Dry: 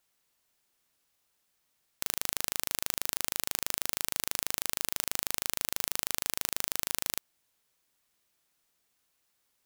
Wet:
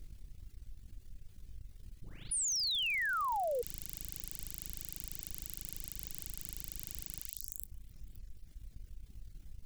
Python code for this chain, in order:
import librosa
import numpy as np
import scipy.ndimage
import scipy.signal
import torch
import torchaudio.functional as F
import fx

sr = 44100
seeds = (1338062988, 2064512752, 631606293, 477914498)

y = fx.spec_delay(x, sr, highs='late', ms=457)
y = fx.dmg_noise_colour(y, sr, seeds[0], colour='pink', level_db=-57.0)
y = fx.low_shelf(y, sr, hz=88.0, db=10.5)
y = fx.doubler(y, sr, ms=21.0, db=-7)
y = fx.echo_feedback(y, sr, ms=261, feedback_pct=55, wet_db=-17.5)
y = fx.dereverb_blind(y, sr, rt60_s=1.1)
y = fx.tone_stack(y, sr, knobs='10-0-1')
y = fx.transient(y, sr, attack_db=3, sustain_db=-9)
y = fx.spec_paint(y, sr, seeds[1], shape='fall', start_s=2.31, length_s=1.31, low_hz=460.0, high_hz=10000.0, level_db=-34.0)
y = fx.env_flatten(y, sr, amount_pct=50)